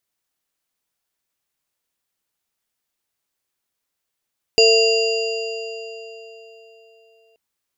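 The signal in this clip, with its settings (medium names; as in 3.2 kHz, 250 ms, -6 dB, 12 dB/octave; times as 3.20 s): sine partials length 2.78 s, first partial 450 Hz, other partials 670/2780/4810/7000 Hz, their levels -10/-5/-2/-13 dB, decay 3.67 s, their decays 4.23/3.56/2.71/2.72 s, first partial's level -11.5 dB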